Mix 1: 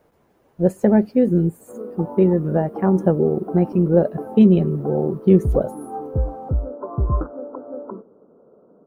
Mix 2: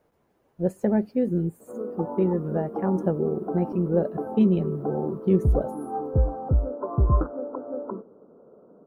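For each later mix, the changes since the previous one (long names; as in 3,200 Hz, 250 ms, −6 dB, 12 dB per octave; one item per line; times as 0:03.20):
speech −7.5 dB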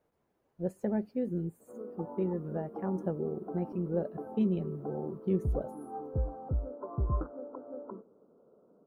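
speech −9.0 dB
background −10.5 dB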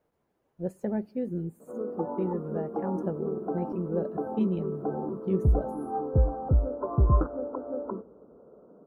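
background +8.5 dB
reverb: on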